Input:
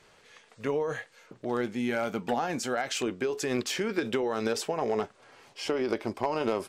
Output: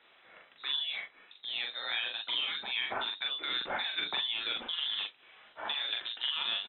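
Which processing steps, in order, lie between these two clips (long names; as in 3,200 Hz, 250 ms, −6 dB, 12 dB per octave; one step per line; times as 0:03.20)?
voice inversion scrambler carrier 3,900 Hz
three-way crossover with the lows and the highs turned down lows −15 dB, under 200 Hz, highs −14 dB, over 2,700 Hz
double-tracking delay 42 ms −3 dB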